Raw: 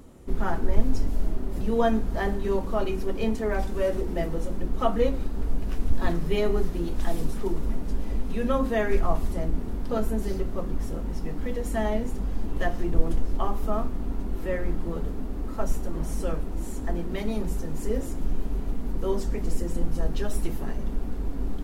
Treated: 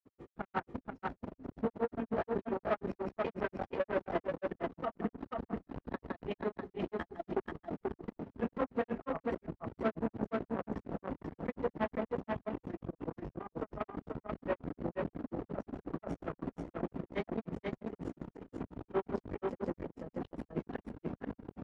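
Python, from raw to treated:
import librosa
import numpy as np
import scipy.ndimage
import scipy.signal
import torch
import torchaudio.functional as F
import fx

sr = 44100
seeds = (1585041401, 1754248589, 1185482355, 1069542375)

y = fx.over_compress(x, sr, threshold_db=-23.0, ratio=-0.5)
y = fx.granulator(y, sr, seeds[0], grain_ms=100.0, per_s=20.0, spray_ms=20.0, spread_st=0)
y = 10.0 ** (-29.5 / 20.0) * np.tanh(y / 10.0 ** (-29.5 / 20.0))
y = fx.granulator(y, sr, seeds[1], grain_ms=95.0, per_s=5.6, spray_ms=100.0, spread_st=0)
y = fx.bandpass_edges(y, sr, low_hz=140.0, high_hz=2200.0)
y = y + 10.0 ** (-3.0 / 20.0) * np.pad(y, (int(486 * sr / 1000.0), 0))[:len(y)]
y = F.gain(torch.from_numpy(y), 5.0).numpy()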